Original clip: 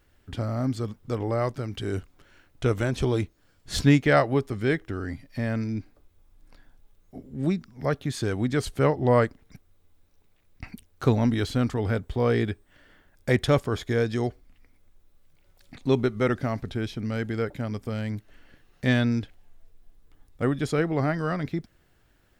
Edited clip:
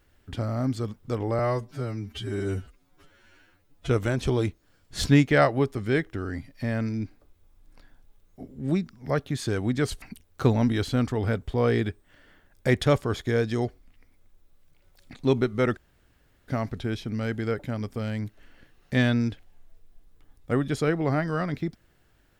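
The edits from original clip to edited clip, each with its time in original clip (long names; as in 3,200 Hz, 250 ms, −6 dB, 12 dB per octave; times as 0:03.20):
0:01.39–0:02.64: time-stretch 2×
0:08.77–0:10.64: remove
0:16.39: splice in room tone 0.71 s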